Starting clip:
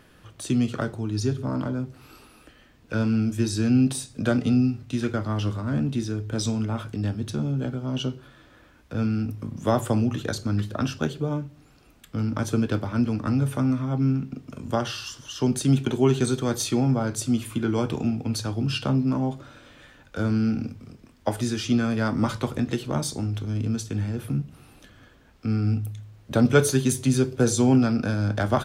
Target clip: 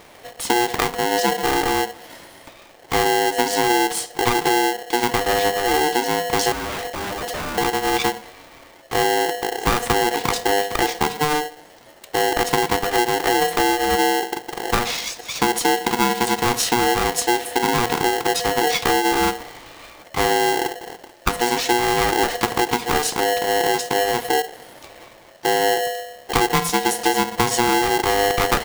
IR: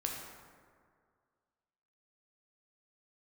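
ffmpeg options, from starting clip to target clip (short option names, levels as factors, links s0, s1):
-filter_complex "[0:a]asettb=1/sr,asplit=3[s0][s1][s2];[s0]atrim=end=6.524[s3];[s1]atrim=start=6.52:end=7.58,asetpts=PTS-STARTPTS,afade=t=in:d=0.004:c=qsin,afade=t=out:st=1.056:d=0.004:c=qsin,aeval=exprs='0.0282*(abs(mod(val(0)/0.0282+3,4)-2)-1)':c=same[s4];[s2]atrim=start=7.576[s5];[s3][s4]acrossfade=d=0.004:c1=hsin:c2=qsin[s6];[s6][s5]acrossfade=d=0.004:c1=qsin:c2=hsin,acompressor=threshold=0.0708:ratio=12,aeval=exprs='val(0)*sgn(sin(2*PI*600*n/s))':c=same,volume=2.66"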